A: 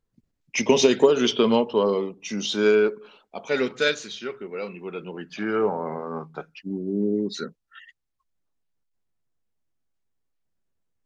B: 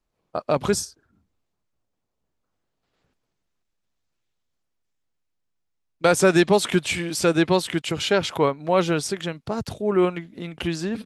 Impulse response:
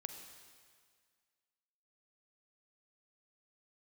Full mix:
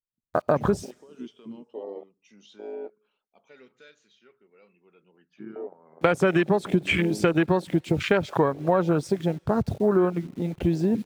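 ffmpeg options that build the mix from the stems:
-filter_complex "[0:a]alimiter=limit=-16dB:level=0:latency=1:release=241,equalizer=frequency=4700:width=1.5:gain=-4.5,volume=-9.5dB[link_01];[1:a]lowshelf=frequency=270:gain=3,bandreject=frequency=2900:width=15,acrusher=bits=6:mix=0:aa=0.000001,volume=3dB,asplit=2[link_02][link_03];[link_03]volume=-14dB[link_04];[2:a]atrim=start_sample=2205[link_05];[link_04][link_05]afir=irnorm=-1:irlink=0[link_06];[link_01][link_02][link_06]amix=inputs=3:normalize=0,afwtdn=0.0708,equalizer=frequency=2600:width_type=o:width=2:gain=3,acompressor=threshold=-17dB:ratio=10"

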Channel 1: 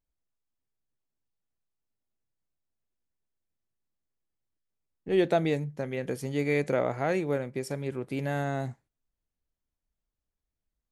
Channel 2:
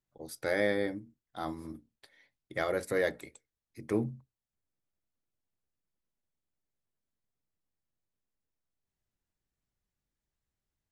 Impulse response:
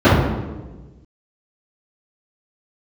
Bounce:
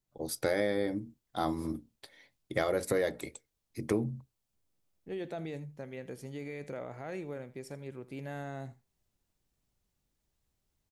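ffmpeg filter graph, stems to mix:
-filter_complex "[0:a]alimiter=limit=-21dB:level=0:latency=1:release=24,volume=-10dB,asplit=2[link_01][link_02];[link_02]volume=-18dB[link_03];[1:a]equalizer=frequency=1700:width_type=o:width=0.99:gain=-5,dynaudnorm=framelen=100:gausssize=3:maxgain=6dB,volume=2dB[link_04];[link_03]aecho=0:1:81:1[link_05];[link_01][link_04][link_05]amix=inputs=3:normalize=0,acompressor=threshold=-26dB:ratio=6"

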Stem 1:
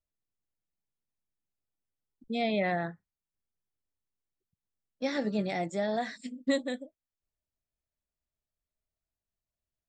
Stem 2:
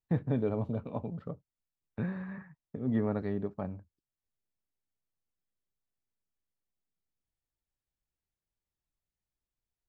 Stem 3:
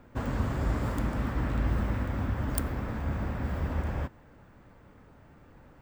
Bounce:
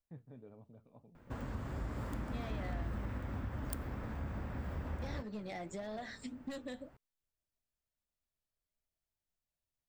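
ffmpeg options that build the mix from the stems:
ffmpeg -i stem1.wav -i stem2.wav -i stem3.wav -filter_complex "[0:a]asoftclip=type=hard:threshold=-26dB,volume=2dB[link_01];[1:a]volume=-19.5dB[link_02];[2:a]dynaudnorm=framelen=170:gausssize=9:maxgain=3dB,adelay=1150,volume=-6dB[link_03];[link_01][link_02]amix=inputs=2:normalize=0,flanger=delay=3.8:depth=5.7:regen=78:speed=1.7:shape=sinusoidal,acompressor=threshold=-37dB:ratio=6,volume=0dB[link_04];[link_03][link_04]amix=inputs=2:normalize=0,acompressor=threshold=-42dB:ratio=2" out.wav

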